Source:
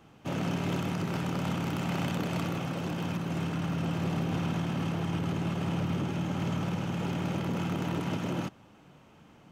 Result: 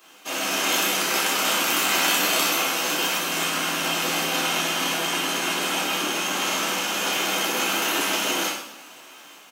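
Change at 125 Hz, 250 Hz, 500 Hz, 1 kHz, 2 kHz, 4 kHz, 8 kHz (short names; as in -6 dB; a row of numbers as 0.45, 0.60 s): -13.0, -1.5, +7.5, +12.0, +17.0, +20.5, +25.0 dB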